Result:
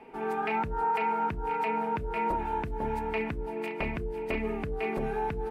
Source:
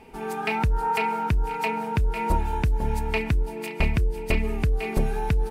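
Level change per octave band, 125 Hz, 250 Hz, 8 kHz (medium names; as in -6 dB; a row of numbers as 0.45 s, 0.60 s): -13.5 dB, -4.5 dB, under -15 dB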